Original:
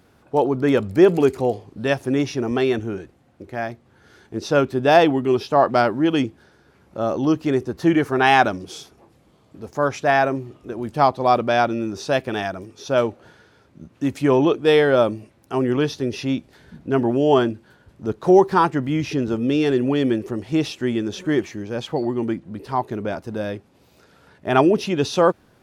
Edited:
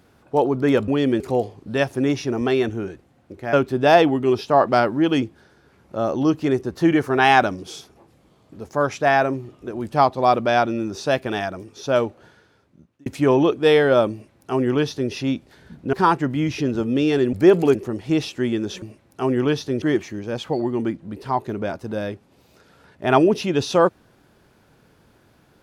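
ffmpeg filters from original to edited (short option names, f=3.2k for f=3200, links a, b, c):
-filter_complex "[0:a]asplit=10[a][b][c][d][e][f][g][h][i][j];[a]atrim=end=0.882[k];[b]atrim=start=19.858:end=20.182[l];[c]atrim=start=1.298:end=3.632[m];[d]atrim=start=4.548:end=14.08,asetpts=PTS-STARTPTS,afade=t=out:st=8.222:d=1.31:c=qsin[n];[e]atrim=start=14.08:end=16.952,asetpts=PTS-STARTPTS,afade=t=in:d=0.004:c=hsin[o];[f]atrim=start=18.458:end=19.862[p];[g]atrim=start=0.878:end=1.302[q];[h]atrim=start=20.178:end=21.252[r];[i]atrim=start=15.138:end=16.142[s];[j]atrim=start=21.248[t];[k][l]acrossfade=d=0.004:c1=hsin:c2=hsin[u];[u][m]acrossfade=d=0.004:c1=hsin:c2=hsin[v];[n][o]concat=n=2:v=0:a=1[w];[v][w]acrossfade=d=0.004:c1=hsin:c2=hsin[x];[x][p]acrossfade=d=0.004:c1=hsin:c2=hsin[y];[y][q]acrossfade=d=0.004:c1=hsin:c2=hsin[z];[z][r]acrossfade=d=0.004:c1=hsin:c2=hsin[aa];[aa][s]acrossfade=d=0.004:c1=hsin:c2=hsin[ab];[ab][t]acrossfade=d=0.004:c1=hsin:c2=hsin"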